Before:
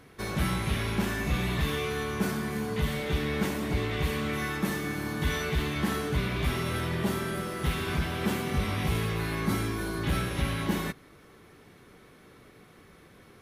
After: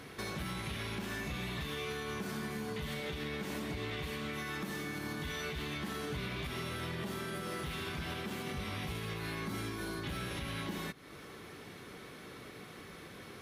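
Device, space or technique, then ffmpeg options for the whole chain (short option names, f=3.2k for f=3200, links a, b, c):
broadcast voice chain: -af "highpass=f=84:p=1,deesser=0.75,acompressor=threshold=-43dB:ratio=3,equalizer=f=3.9k:t=o:w=1.7:g=4,alimiter=level_in=10.5dB:limit=-24dB:level=0:latency=1:release=100,volume=-10.5dB,volume=4.5dB"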